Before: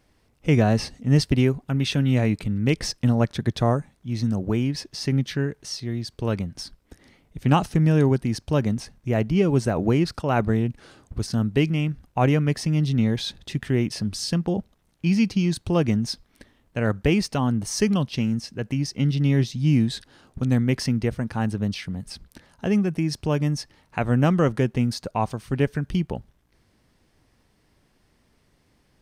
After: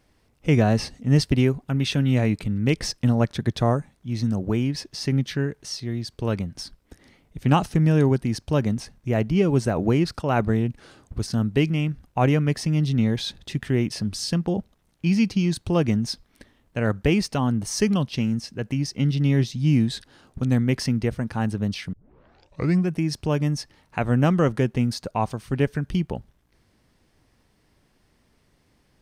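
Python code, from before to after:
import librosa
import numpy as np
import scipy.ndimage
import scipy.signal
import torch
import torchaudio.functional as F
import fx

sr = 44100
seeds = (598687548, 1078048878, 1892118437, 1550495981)

y = fx.edit(x, sr, fx.tape_start(start_s=21.93, length_s=0.95), tone=tone)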